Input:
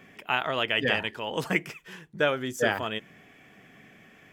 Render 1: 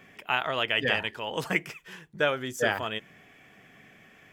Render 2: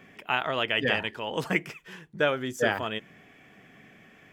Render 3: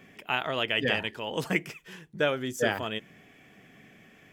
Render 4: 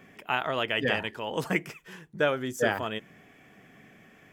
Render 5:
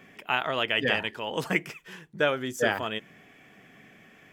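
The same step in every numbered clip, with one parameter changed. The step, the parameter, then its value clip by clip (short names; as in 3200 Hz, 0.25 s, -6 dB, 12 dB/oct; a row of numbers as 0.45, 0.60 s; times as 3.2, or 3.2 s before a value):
bell, frequency: 250, 15000, 1200, 3100, 60 Hz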